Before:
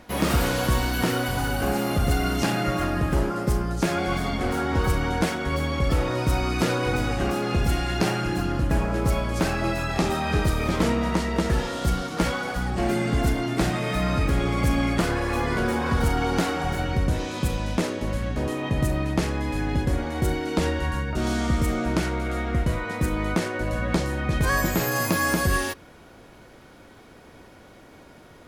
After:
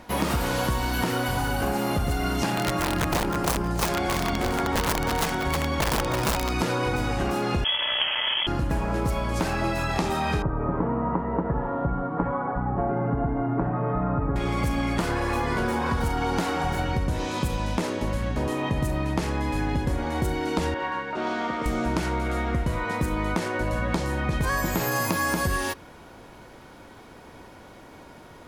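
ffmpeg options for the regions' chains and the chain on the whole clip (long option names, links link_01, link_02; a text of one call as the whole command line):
ffmpeg -i in.wav -filter_complex "[0:a]asettb=1/sr,asplit=3[link_01][link_02][link_03];[link_01]atrim=end=2.564[link_04];[link_02]atrim=start=2.56:end=6.53,asetpts=PTS-STARTPTS,afade=type=in:duration=0.004:curve=qsin,afade=type=out:start_time=3.966:duration=0.004:curve=qsin,aeval=exprs='(mod(6.31*val(0)+1,2)-1)/6.31':channel_layout=same,aecho=1:1:315|630|945:0.376|0.101|0.0274,atrim=end_sample=175077[link_05];[link_03]atrim=start=6.526[link_06];[link_04][link_05]acrossfade=duration=0.004:curve1=hsin:curve2=qsin[link_07];[link_07][link_06]acrossfade=duration=0.004:curve1=qsin:curve2=hsin,asettb=1/sr,asplit=3[link_08][link_09][link_10];[link_08]atrim=end=7.644[link_11];[link_09]atrim=start=7.64:end=8.47,asetpts=PTS-STARTPTS,afade=type=in:duration=0.004:curve=qsin,afade=type=out:start_time=0.826:duration=0.004:curve=qsin,acrusher=bits=5:dc=4:mix=0:aa=0.000001,lowpass=frequency=2900:width_type=q:width=0.5098,lowpass=frequency=2900:width_type=q:width=0.6013,lowpass=frequency=2900:width_type=q:width=0.9,lowpass=frequency=2900:width_type=q:width=2.563,afreqshift=-3400[link_12];[link_10]atrim=start=8.466[link_13];[link_11][link_12]acrossfade=duration=0.004:curve1=hsin:curve2=qsin[link_14];[link_14][link_13]acrossfade=duration=0.004:curve1=qsin:curve2=hsin,asettb=1/sr,asplit=3[link_15][link_16][link_17];[link_15]atrim=end=10.424[link_18];[link_16]atrim=start=10.42:end=14.36,asetpts=PTS-STARTPTS,afade=type=in:duration=0.004:curve=qsin,afade=type=out:start_time=3.936:duration=0.004:curve=qsin,lowpass=frequency=1300:width=0.5412,lowpass=frequency=1300:width=1.3066,aecho=1:1:7.1:0.5,atrim=end_sample=173754[link_19];[link_17]atrim=start=14.356[link_20];[link_18][link_19]acrossfade=duration=0.004:curve1=hsin:curve2=qsin[link_21];[link_21][link_20]acrossfade=duration=0.004:curve1=qsin:curve2=hsin,asettb=1/sr,asplit=3[link_22][link_23][link_24];[link_22]atrim=end=20.744[link_25];[link_23]atrim=start=20.74:end=21.66,asetpts=PTS-STARTPTS,afade=type=in:duration=0.004:curve=qsin,afade=type=out:start_time=0.916:duration=0.004:curve=qsin,acrusher=bits=6:mix=0:aa=0.5,highpass=360,lowpass=2900[link_26];[link_24]atrim=start=21.656[link_27];[link_25][link_26]acrossfade=duration=0.004:curve1=hsin:curve2=qsin[link_28];[link_28][link_27]acrossfade=duration=0.004:curve1=qsin:curve2=hsin,equalizer=frequency=930:width_type=o:width=0.39:gain=5.5,acompressor=threshold=-23dB:ratio=6,volume=1.5dB" out.wav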